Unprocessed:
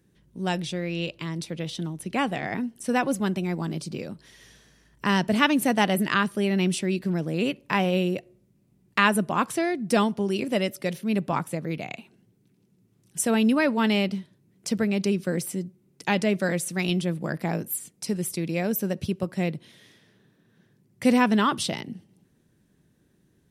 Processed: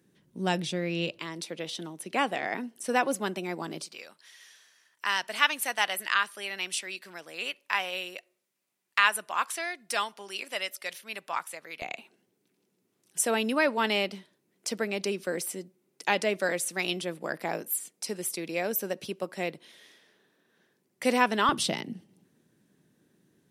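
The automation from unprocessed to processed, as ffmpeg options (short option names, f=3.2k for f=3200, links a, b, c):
-af "asetnsamples=n=441:p=0,asendcmd='1.19 highpass f 370;3.86 highpass f 1100;11.82 highpass f 420;21.49 highpass f 170',highpass=170"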